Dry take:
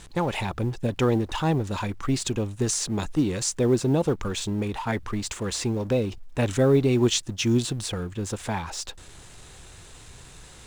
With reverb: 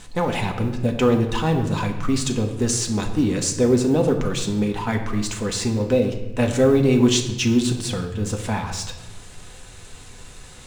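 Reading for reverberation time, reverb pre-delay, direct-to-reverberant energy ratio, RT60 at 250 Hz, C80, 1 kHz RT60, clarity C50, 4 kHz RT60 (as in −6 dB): 1.1 s, 4 ms, 2.5 dB, 1.6 s, 10.5 dB, 0.95 s, 8.5 dB, 0.80 s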